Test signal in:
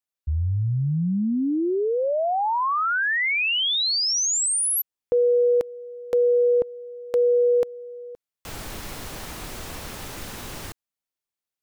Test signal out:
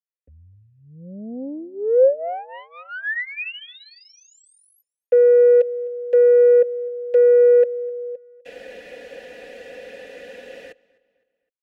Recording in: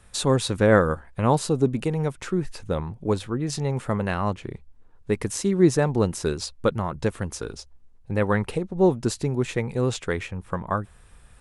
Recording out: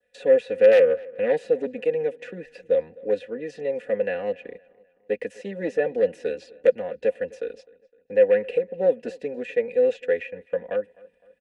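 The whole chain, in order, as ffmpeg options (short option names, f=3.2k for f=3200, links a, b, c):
-filter_complex "[0:a]agate=range=-13dB:threshold=-40dB:ratio=3:release=55:detection=peak,bandreject=f=1.3k:w=20,aecho=1:1:4.1:0.79,adynamicequalizer=threshold=0.0112:dfrequency=2500:dqfactor=2.4:tfrequency=2500:tqfactor=2.4:attack=5:release=100:ratio=0.375:range=2:mode=boostabove:tftype=bell,acrossover=split=140|1000|1500[a][b][c][d];[b]aeval=exprs='(mod(2.37*val(0)+1,2)-1)/2.37':c=same[e];[d]acompressor=threshold=-40dB:ratio=4:attack=22:release=69:detection=peak[f];[a][e][c][f]amix=inputs=4:normalize=0,aeval=exprs='0.631*(cos(1*acos(clip(val(0)/0.631,-1,1)))-cos(1*PI/2))+0.0355*(cos(4*acos(clip(val(0)/0.631,-1,1)))-cos(4*PI/2))+0.141*(cos(5*acos(clip(val(0)/0.631,-1,1)))-cos(5*PI/2))+0.0501*(cos(6*acos(clip(val(0)/0.631,-1,1)))-cos(6*PI/2))':c=same,asplit=3[g][h][i];[g]bandpass=f=530:t=q:w=8,volume=0dB[j];[h]bandpass=f=1.84k:t=q:w=8,volume=-6dB[k];[i]bandpass=f=2.48k:t=q:w=8,volume=-9dB[l];[j][k][l]amix=inputs=3:normalize=0,asplit=2[m][n];[n]adelay=256,lowpass=f=4.5k:p=1,volume=-23.5dB,asplit=2[o][p];[p]adelay=256,lowpass=f=4.5k:p=1,volume=0.47,asplit=2[q][r];[r]adelay=256,lowpass=f=4.5k:p=1,volume=0.47[s];[m][o][q][s]amix=inputs=4:normalize=0,volume=2.5dB"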